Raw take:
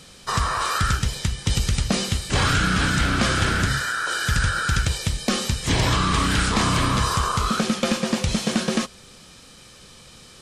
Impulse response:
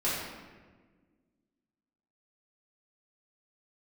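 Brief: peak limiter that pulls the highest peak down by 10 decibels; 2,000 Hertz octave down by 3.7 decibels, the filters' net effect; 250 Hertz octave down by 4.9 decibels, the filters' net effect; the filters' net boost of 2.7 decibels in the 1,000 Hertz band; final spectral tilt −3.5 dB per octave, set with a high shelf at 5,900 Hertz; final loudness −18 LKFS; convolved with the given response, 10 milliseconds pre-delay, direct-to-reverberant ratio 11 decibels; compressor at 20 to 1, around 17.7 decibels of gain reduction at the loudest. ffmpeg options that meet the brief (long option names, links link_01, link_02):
-filter_complex "[0:a]equalizer=frequency=250:width_type=o:gain=-7,equalizer=frequency=1000:width_type=o:gain=7,equalizer=frequency=2000:width_type=o:gain=-8.5,highshelf=frequency=5900:gain=-3.5,acompressor=threshold=-35dB:ratio=20,alimiter=level_in=7.5dB:limit=-24dB:level=0:latency=1,volume=-7.5dB,asplit=2[link_01][link_02];[1:a]atrim=start_sample=2205,adelay=10[link_03];[link_02][link_03]afir=irnorm=-1:irlink=0,volume=-20.5dB[link_04];[link_01][link_04]amix=inputs=2:normalize=0,volume=23dB"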